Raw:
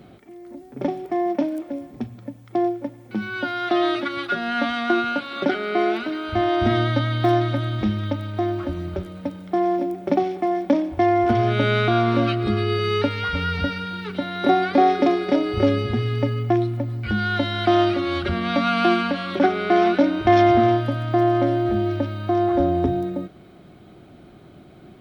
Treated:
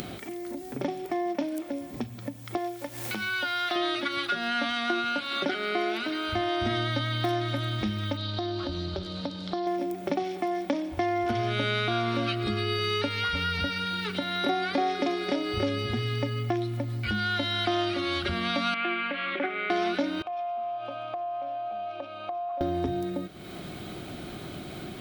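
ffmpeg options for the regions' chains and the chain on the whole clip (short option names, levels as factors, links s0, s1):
-filter_complex "[0:a]asettb=1/sr,asplit=3[s0][s1][s2];[s0]atrim=end=2.574[s3];[s1]atrim=start=2.57:end=3.76,asetpts=PTS-STARTPTS,afade=t=in:d=0.004:c=qsin,afade=t=out:st=1.186:d=0.004:c=qsin,equalizer=f=230:t=o:w=2.1:g=-11,acrusher=bits=8:mix=0:aa=0.5,acompressor=mode=upward:threshold=0.02:ratio=2.5:attack=3.2:release=140:knee=2.83:detection=peak[s4];[s2]atrim=start=3.756[s5];[s3][s4]acrossfade=d=0.004:c1=hsin:c2=qsin[s6];[s6][s5]acrossfade=d=0.004:c1=qsin:c2=hsin,asettb=1/sr,asplit=3[s7][s8][s9];[s7]atrim=end=8.174[s10];[s8]atrim=start=8.17:end=9.67,asetpts=PTS-STARTPTS,afade=t=in:d=0.004:c=qsin,afade=t=out:st=1.496:d=0.004:c=qsin,acompressor=threshold=0.0631:ratio=2.5:attack=3.2:release=140:knee=1:detection=peak,lowpass=f=4300:t=q:w=4.6,equalizer=f=2200:w=1.7:g=-8.5[s11];[s9]atrim=start=9.666[s12];[s10][s11]acrossfade=d=0.004:c1=hsin:c2=qsin[s13];[s13][s12]acrossfade=d=0.004:c1=qsin:c2=hsin,asettb=1/sr,asplit=3[s14][s15][s16];[s14]atrim=end=18.744[s17];[s15]atrim=start=18.74:end=19.7,asetpts=PTS-STARTPTS,afade=t=in:d=0.004:c=qsin,afade=t=out:st=0.956:d=0.004:c=qsin,acompressor=mode=upward:threshold=0.0891:ratio=2.5:attack=3.2:release=140:knee=2.83:detection=peak,highpass=400,equalizer=f=430:t=q:w=4:g=-6,equalizer=f=700:t=q:w=4:g=-7,equalizer=f=990:t=q:w=4:g=-9,equalizer=f=1500:t=q:w=4:g=-4,equalizer=f=2200:t=q:w=4:g=4,lowpass=f=2500:w=0.5412,lowpass=f=2500:w=1.3066[s18];[s16]atrim=start=19.696[s19];[s17][s18]acrossfade=d=0.004:c1=hsin:c2=qsin[s20];[s20][s19]acrossfade=d=0.004:c1=qsin:c2=hsin,asettb=1/sr,asplit=3[s21][s22][s23];[s21]atrim=end=20.224[s24];[s22]atrim=start=20.22:end=22.61,asetpts=PTS-STARTPTS,afade=t=in:d=0.004:c=qsin,afade=t=out:st=2.386:d=0.004:c=qsin,asplit=3[s25][s26][s27];[s25]bandpass=f=730:t=q:w=8,volume=1[s28];[s26]bandpass=f=1090:t=q:w=8,volume=0.501[s29];[s27]bandpass=f=2440:t=q:w=8,volume=0.355[s30];[s28][s29][s30]amix=inputs=3:normalize=0,acompressor=threshold=0.0251:ratio=4:attack=3.2:release=140:knee=1:detection=peak,bandreject=f=50:t=h:w=6,bandreject=f=100:t=h:w=6,bandreject=f=150:t=h:w=6,bandreject=f=200:t=h:w=6,bandreject=f=250:t=h:w=6,bandreject=f=300:t=h:w=6,bandreject=f=350:t=h:w=6,bandreject=f=400:t=h:w=6[s31];[s23]atrim=start=22.606[s32];[s24][s31]acrossfade=d=0.004:c1=hsin:c2=qsin[s33];[s33][s32]acrossfade=d=0.004:c1=qsin:c2=hsin,acompressor=mode=upward:threshold=0.0631:ratio=2.5,highshelf=f=2100:g=12,acompressor=threshold=0.0794:ratio=2.5,volume=0.596"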